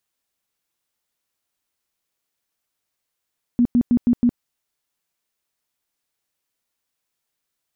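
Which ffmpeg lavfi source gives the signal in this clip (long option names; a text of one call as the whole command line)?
ffmpeg -f lavfi -i "aevalsrc='0.251*sin(2*PI*241*mod(t,0.16))*lt(mod(t,0.16),15/241)':duration=0.8:sample_rate=44100" out.wav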